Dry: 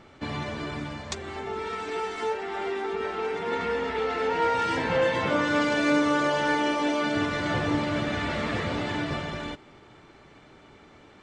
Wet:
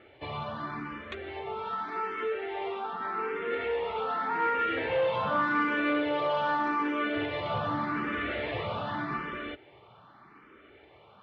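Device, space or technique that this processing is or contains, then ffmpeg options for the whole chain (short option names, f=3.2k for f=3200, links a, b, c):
barber-pole phaser into a guitar amplifier: -filter_complex "[0:a]asplit=2[a][b];[b]afreqshift=0.84[c];[a][c]amix=inputs=2:normalize=1,asoftclip=type=tanh:threshold=-21dB,highpass=77,equalizer=f=90:t=q:w=4:g=-5,equalizer=f=160:t=q:w=4:g=-6,equalizer=f=260:t=q:w=4:g=-4,equalizer=f=1.2k:t=q:w=4:g=6,lowpass=f=3.4k:w=0.5412,lowpass=f=3.4k:w=1.3066"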